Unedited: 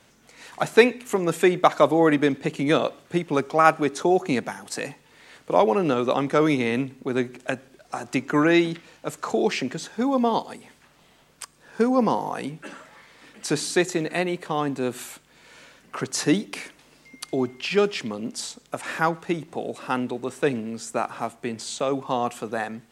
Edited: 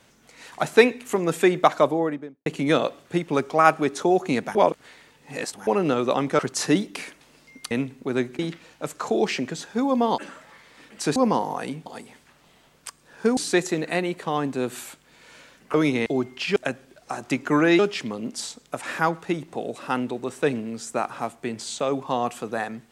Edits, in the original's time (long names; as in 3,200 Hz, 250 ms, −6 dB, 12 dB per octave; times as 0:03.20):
0:01.63–0:02.46: fade out and dull
0:04.55–0:05.67: reverse
0:06.39–0:06.71: swap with 0:15.97–0:17.29
0:07.39–0:08.62: move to 0:17.79
0:10.41–0:11.92: swap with 0:12.62–0:13.60